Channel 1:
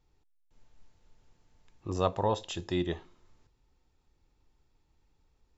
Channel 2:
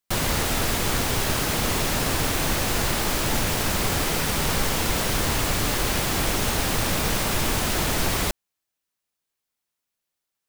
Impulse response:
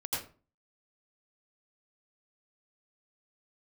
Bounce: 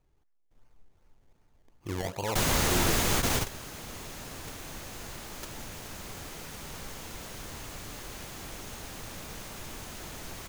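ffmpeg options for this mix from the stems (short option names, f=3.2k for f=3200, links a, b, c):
-filter_complex "[0:a]alimiter=limit=-22.5dB:level=0:latency=1:release=21,acrusher=samples=24:mix=1:aa=0.000001:lfo=1:lforange=24:lforate=2.6,volume=0dB,asplit=2[a][b];[1:a]adelay=2250,volume=-2.5dB[c];[b]apad=whole_len=561764[d];[c][d]sidechaingate=range=-16dB:threshold=-60dB:ratio=16:detection=peak[e];[a][e]amix=inputs=2:normalize=0,equalizer=f=6.5k:w=6.2:g=4.5"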